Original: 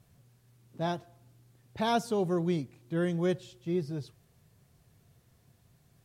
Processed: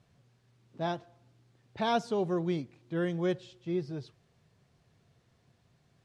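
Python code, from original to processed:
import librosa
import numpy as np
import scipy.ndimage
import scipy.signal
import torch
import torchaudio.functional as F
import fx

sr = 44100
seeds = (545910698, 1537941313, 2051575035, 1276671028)

y = scipy.signal.sosfilt(scipy.signal.butter(2, 5300.0, 'lowpass', fs=sr, output='sos'), x)
y = fx.low_shelf(y, sr, hz=130.0, db=-8.0)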